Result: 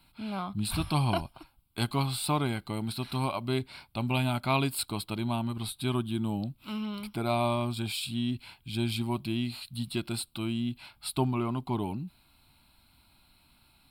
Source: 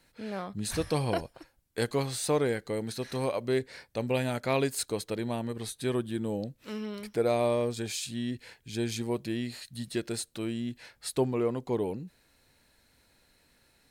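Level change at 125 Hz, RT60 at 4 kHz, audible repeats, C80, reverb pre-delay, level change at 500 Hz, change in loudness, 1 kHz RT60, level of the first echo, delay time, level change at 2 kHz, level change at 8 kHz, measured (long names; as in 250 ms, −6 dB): +4.5 dB, no reverb audible, no echo audible, no reverb audible, no reverb audible, −6.5 dB, +0.5 dB, no reverb audible, no echo audible, no echo audible, +0.5 dB, −2.0 dB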